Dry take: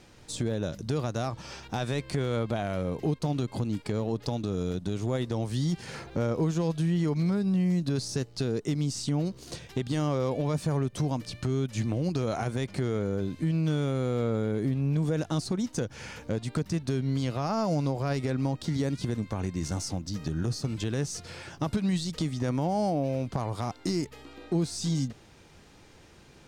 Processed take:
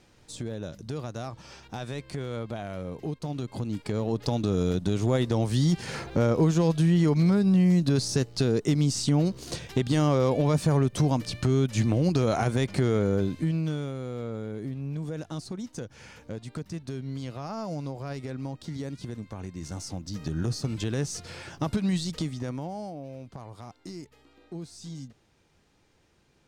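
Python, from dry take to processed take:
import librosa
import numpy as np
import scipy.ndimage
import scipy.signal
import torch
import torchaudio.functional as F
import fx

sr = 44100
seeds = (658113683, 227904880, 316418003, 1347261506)

y = fx.gain(x, sr, db=fx.line((3.21, -5.0), (4.48, 5.0), (13.19, 5.0), (13.97, -6.5), (19.56, -6.5), (20.4, 1.0), (22.11, 1.0), (22.94, -11.5)))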